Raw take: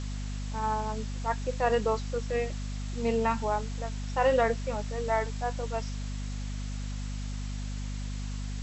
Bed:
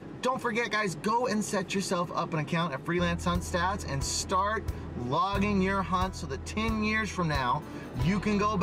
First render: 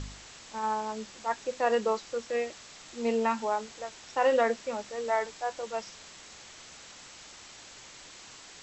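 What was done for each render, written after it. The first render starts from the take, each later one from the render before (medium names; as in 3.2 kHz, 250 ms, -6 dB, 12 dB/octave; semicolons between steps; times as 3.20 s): de-hum 50 Hz, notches 5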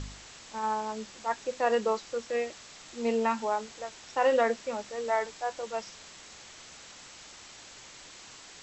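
no audible change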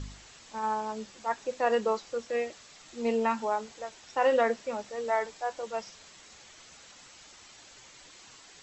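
noise reduction 6 dB, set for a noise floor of -50 dBFS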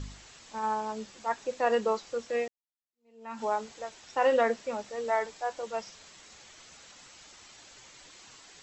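2.48–3.42 s: fade in exponential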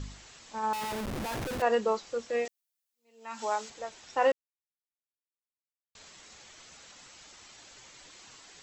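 0.73–1.62 s: Schmitt trigger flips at -46 dBFS; 2.45–3.70 s: tilt EQ +3 dB/octave; 4.32–5.95 s: mute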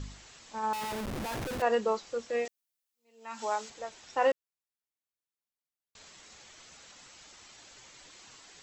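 trim -1 dB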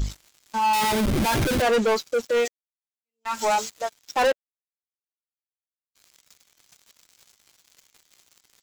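expander on every frequency bin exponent 1.5; waveshaping leveller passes 5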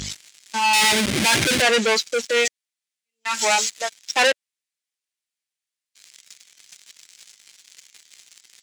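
high-pass 120 Hz 12 dB/octave; high-order bell 4.1 kHz +11 dB 2.9 oct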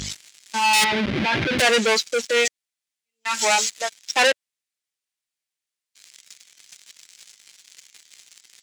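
0.84–1.59 s: distance through air 300 m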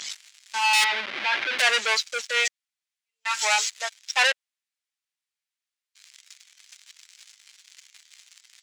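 high-pass 990 Hz 12 dB/octave; treble shelf 6.8 kHz -8 dB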